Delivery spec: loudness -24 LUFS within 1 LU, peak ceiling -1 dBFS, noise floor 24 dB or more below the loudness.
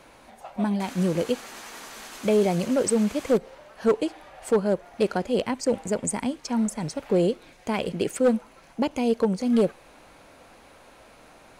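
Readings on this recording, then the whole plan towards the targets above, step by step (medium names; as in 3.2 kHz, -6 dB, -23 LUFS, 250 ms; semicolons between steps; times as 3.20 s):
clipped samples 0.5%; clipping level -14.0 dBFS; loudness -25.5 LUFS; peak level -14.0 dBFS; loudness target -24.0 LUFS
-> clip repair -14 dBFS; trim +1.5 dB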